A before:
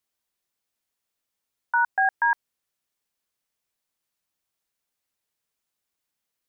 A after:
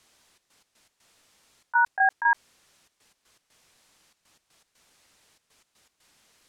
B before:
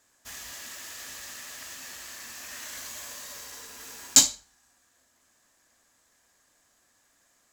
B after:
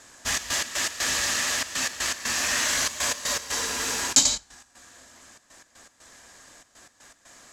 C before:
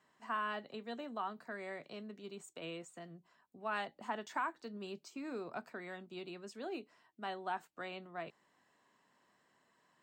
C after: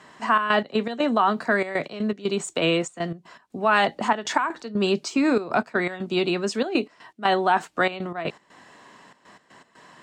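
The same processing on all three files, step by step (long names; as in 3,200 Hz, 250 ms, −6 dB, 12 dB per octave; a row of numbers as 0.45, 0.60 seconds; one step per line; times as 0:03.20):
low-pass filter 8,600 Hz 12 dB per octave
gate pattern "xxx.x.x.xx" 120 BPM −12 dB
in parallel at −1.5 dB: compressor whose output falls as the input rises −42 dBFS, ratio −0.5
on the sum: loudness normalisation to −24 LKFS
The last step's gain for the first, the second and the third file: +1.0, +11.0, +17.5 decibels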